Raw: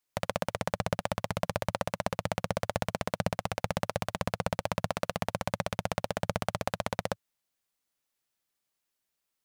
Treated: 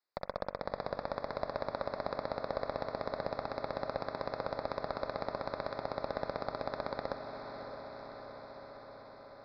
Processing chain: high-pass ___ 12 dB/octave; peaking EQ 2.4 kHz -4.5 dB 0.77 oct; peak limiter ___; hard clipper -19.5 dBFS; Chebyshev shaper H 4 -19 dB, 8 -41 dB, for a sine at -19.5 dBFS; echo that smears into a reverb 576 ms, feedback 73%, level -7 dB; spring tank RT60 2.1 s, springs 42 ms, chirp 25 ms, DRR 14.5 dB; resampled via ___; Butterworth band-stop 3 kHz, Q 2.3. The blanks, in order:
360 Hz, -18 dBFS, 11.025 kHz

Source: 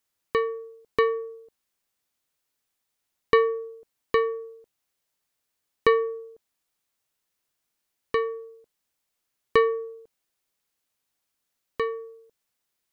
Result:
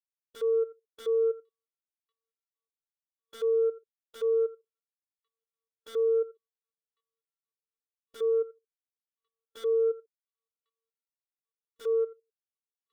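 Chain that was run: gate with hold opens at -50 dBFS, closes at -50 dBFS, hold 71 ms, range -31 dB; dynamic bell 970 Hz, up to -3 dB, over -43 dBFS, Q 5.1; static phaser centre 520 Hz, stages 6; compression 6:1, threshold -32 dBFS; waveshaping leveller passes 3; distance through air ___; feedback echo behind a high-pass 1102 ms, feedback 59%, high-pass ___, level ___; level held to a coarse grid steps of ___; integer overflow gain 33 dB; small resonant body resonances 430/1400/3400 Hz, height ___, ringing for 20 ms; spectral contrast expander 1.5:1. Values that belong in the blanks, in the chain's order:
55 m, 3.6 kHz, -19 dB, 13 dB, 15 dB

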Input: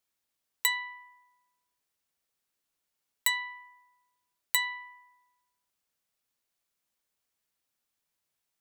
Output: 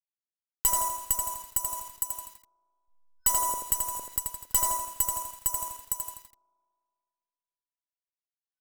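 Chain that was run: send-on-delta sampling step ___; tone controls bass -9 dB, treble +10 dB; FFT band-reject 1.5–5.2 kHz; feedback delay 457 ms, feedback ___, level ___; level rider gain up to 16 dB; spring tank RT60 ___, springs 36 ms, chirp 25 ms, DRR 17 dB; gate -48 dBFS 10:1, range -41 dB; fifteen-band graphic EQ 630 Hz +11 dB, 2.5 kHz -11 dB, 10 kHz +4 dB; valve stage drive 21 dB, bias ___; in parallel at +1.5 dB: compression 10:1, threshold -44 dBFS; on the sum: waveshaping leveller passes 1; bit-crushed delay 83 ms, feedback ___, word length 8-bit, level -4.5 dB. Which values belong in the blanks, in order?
-34.5 dBFS, 27%, -8.5 dB, 2.2 s, 0.5, 55%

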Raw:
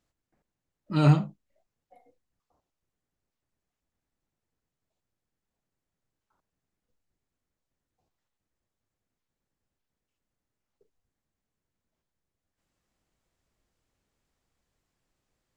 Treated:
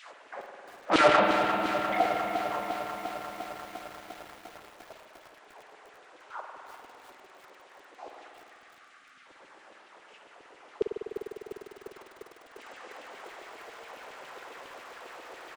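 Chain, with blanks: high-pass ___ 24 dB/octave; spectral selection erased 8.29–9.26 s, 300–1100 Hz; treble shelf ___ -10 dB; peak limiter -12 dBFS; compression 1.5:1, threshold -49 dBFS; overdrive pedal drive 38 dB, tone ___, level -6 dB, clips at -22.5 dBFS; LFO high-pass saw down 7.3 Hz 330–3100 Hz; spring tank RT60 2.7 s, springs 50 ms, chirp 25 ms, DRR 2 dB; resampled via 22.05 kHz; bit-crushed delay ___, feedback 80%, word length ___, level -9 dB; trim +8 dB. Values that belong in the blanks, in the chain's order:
66 Hz, 2.3 kHz, 3.1 kHz, 350 ms, 9-bit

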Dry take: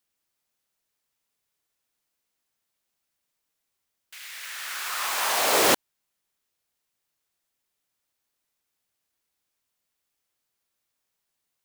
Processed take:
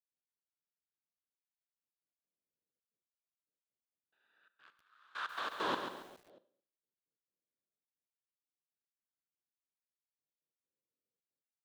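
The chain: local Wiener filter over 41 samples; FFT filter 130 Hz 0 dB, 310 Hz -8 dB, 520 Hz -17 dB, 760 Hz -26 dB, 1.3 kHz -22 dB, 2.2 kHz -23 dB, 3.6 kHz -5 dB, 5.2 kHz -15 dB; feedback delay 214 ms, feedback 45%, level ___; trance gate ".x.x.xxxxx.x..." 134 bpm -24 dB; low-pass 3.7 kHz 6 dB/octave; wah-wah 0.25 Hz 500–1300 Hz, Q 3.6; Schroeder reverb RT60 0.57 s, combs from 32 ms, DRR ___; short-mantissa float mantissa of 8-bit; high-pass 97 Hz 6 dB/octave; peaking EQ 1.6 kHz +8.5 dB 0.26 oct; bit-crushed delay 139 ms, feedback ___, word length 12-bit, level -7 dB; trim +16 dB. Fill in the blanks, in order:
-17.5 dB, 14 dB, 35%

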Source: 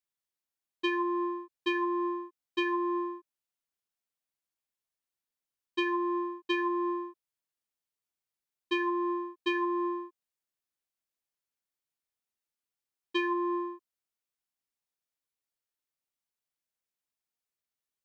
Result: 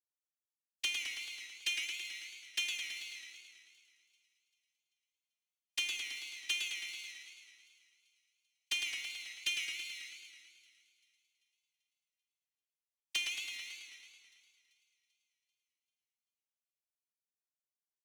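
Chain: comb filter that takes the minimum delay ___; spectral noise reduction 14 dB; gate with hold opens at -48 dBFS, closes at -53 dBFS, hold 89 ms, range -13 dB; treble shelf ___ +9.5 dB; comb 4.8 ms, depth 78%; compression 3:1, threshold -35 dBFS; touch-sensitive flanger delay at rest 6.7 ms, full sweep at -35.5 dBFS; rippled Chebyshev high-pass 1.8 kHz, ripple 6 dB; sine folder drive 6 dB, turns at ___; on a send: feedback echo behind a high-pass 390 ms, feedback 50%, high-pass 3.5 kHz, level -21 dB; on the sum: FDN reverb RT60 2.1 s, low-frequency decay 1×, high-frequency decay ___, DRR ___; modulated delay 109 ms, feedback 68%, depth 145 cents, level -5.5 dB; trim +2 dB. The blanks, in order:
1.2 ms, 4.2 kHz, -28.5 dBFS, 0.45×, 5.5 dB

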